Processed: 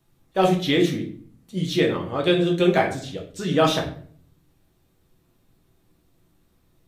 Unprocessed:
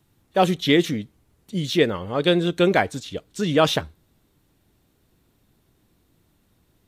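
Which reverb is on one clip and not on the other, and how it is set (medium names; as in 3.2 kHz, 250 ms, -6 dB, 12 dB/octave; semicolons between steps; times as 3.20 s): simulated room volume 56 m³, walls mixed, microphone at 0.69 m; trim -4.5 dB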